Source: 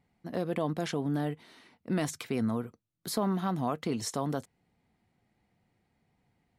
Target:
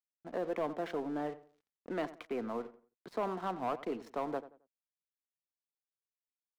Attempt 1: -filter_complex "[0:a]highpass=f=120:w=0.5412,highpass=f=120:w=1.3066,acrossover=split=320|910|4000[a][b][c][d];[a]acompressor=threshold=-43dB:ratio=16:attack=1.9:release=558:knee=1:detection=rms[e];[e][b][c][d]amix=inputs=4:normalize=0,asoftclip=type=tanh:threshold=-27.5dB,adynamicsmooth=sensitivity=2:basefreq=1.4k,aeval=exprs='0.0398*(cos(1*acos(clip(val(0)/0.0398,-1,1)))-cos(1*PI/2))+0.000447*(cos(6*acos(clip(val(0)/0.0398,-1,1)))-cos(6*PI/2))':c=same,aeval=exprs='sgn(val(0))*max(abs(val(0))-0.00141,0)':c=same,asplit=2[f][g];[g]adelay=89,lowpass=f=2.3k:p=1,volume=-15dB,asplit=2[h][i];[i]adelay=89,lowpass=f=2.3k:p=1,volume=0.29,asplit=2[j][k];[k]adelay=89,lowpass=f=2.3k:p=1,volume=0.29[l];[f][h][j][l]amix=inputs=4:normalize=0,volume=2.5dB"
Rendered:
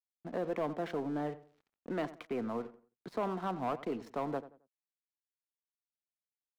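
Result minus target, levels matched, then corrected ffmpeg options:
compressor: peak gain reduction -10 dB
-filter_complex "[0:a]highpass=f=120:w=0.5412,highpass=f=120:w=1.3066,acrossover=split=320|910|4000[a][b][c][d];[a]acompressor=threshold=-53.5dB:ratio=16:attack=1.9:release=558:knee=1:detection=rms[e];[e][b][c][d]amix=inputs=4:normalize=0,asoftclip=type=tanh:threshold=-27.5dB,adynamicsmooth=sensitivity=2:basefreq=1.4k,aeval=exprs='0.0398*(cos(1*acos(clip(val(0)/0.0398,-1,1)))-cos(1*PI/2))+0.000447*(cos(6*acos(clip(val(0)/0.0398,-1,1)))-cos(6*PI/2))':c=same,aeval=exprs='sgn(val(0))*max(abs(val(0))-0.00141,0)':c=same,asplit=2[f][g];[g]adelay=89,lowpass=f=2.3k:p=1,volume=-15dB,asplit=2[h][i];[i]adelay=89,lowpass=f=2.3k:p=1,volume=0.29,asplit=2[j][k];[k]adelay=89,lowpass=f=2.3k:p=1,volume=0.29[l];[f][h][j][l]amix=inputs=4:normalize=0,volume=2.5dB"

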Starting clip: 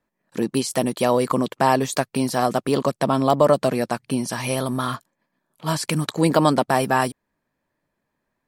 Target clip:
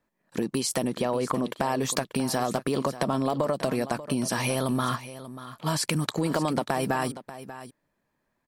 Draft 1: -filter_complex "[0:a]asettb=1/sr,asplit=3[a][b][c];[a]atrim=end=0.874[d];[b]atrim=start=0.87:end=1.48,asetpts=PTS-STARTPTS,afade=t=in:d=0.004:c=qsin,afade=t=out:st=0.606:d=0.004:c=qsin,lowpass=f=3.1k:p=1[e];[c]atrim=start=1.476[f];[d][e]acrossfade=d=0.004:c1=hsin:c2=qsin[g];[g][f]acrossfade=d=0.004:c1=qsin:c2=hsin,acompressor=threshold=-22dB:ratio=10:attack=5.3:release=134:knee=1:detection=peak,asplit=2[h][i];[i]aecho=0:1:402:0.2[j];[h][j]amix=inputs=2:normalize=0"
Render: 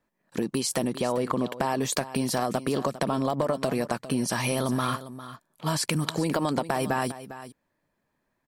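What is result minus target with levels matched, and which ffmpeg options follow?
echo 0.186 s early
-filter_complex "[0:a]asettb=1/sr,asplit=3[a][b][c];[a]atrim=end=0.874[d];[b]atrim=start=0.87:end=1.48,asetpts=PTS-STARTPTS,afade=t=in:d=0.004:c=qsin,afade=t=out:st=0.606:d=0.004:c=qsin,lowpass=f=3.1k:p=1[e];[c]atrim=start=1.476[f];[d][e]acrossfade=d=0.004:c1=hsin:c2=qsin[g];[g][f]acrossfade=d=0.004:c1=qsin:c2=hsin,acompressor=threshold=-22dB:ratio=10:attack=5.3:release=134:knee=1:detection=peak,asplit=2[h][i];[i]aecho=0:1:588:0.2[j];[h][j]amix=inputs=2:normalize=0"

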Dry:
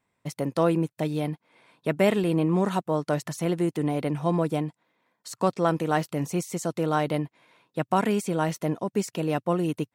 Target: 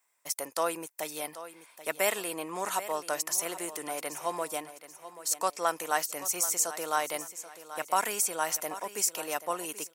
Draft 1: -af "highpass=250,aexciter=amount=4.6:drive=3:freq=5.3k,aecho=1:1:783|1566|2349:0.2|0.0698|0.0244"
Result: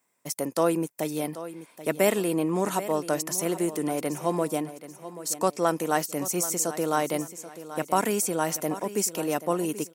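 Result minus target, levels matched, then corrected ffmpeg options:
250 Hz band +11.5 dB
-af "highpass=810,aexciter=amount=4.6:drive=3:freq=5.3k,aecho=1:1:783|1566|2349:0.2|0.0698|0.0244"

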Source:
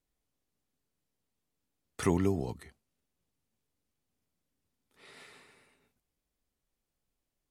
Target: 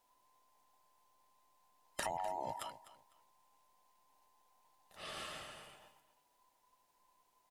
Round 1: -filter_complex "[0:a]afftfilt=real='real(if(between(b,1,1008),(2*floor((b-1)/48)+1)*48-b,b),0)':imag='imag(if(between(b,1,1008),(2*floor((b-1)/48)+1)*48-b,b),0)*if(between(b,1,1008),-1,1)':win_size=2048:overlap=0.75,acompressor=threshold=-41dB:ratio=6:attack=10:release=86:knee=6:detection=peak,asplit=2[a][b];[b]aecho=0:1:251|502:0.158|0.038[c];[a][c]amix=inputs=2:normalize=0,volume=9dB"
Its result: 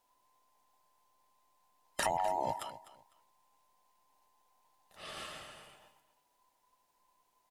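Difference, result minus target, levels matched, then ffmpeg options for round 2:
compressor: peak gain reduction -7 dB
-filter_complex "[0:a]afftfilt=real='real(if(between(b,1,1008),(2*floor((b-1)/48)+1)*48-b,b),0)':imag='imag(if(between(b,1,1008),(2*floor((b-1)/48)+1)*48-b,b),0)*if(between(b,1,1008),-1,1)':win_size=2048:overlap=0.75,acompressor=threshold=-49.5dB:ratio=6:attack=10:release=86:knee=6:detection=peak,asplit=2[a][b];[b]aecho=0:1:251|502:0.158|0.038[c];[a][c]amix=inputs=2:normalize=0,volume=9dB"

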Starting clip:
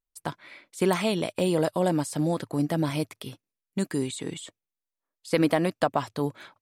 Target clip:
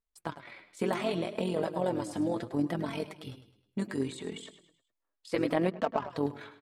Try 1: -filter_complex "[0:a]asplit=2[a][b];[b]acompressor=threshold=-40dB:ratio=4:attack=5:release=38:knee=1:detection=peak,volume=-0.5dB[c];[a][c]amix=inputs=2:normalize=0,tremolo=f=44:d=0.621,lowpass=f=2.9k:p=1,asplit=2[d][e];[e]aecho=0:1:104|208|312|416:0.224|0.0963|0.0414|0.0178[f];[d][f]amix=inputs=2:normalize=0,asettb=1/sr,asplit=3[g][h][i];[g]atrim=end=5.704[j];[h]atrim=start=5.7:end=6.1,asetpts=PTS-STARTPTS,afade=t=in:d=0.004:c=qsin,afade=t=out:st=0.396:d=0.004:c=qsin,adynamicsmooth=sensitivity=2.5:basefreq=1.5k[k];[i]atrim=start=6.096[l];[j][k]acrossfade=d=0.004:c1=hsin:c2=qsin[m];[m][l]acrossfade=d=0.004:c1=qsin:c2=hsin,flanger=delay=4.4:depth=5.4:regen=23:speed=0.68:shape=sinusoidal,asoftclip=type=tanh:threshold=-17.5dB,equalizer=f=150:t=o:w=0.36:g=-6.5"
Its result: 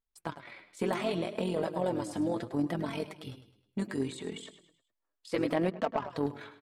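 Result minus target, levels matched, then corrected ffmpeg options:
soft clip: distortion +19 dB
-filter_complex "[0:a]asplit=2[a][b];[b]acompressor=threshold=-40dB:ratio=4:attack=5:release=38:knee=1:detection=peak,volume=-0.5dB[c];[a][c]amix=inputs=2:normalize=0,tremolo=f=44:d=0.621,lowpass=f=2.9k:p=1,asplit=2[d][e];[e]aecho=0:1:104|208|312|416:0.224|0.0963|0.0414|0.0178[f];[d][f]amix=inputs=2:normalize=0,asettb=1/sr,asplit=3[g][h][i];[g]atrim=end=5.704[j];[h]atrim=start=5.7:end=6.1,asetpts=PTS-STARTPTS,afade=t=in:d=0.004:c=qsin,afade=t=out:st=0.396:d=0.004:c=qsin,adynamicsmooth=sensitivity=2.5:basefreq=1.5k[k];[i]atrim=start=6.096[l];[j][k]acrossfade=d=0.004:c1=hsin:c2=qsin[m];[m][l]acrossfade=d=0.004:c1=qsin:c2=hsin,flanger=delay=4.4:depth=5.4:regen=23:speed=0.68:shape=sinusoidal,asoftclip=type=tanh:threshold=-7dB,equalizer=f=150:t=o:w=0.36:g=-6.5"

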